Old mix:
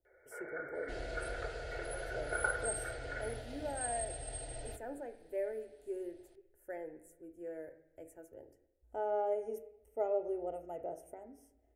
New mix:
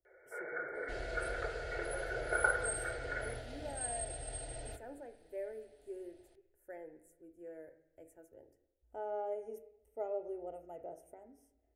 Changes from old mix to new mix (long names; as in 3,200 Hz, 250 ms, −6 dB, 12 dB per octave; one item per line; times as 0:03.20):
speech −5.0 dB
first sound +3.5 dB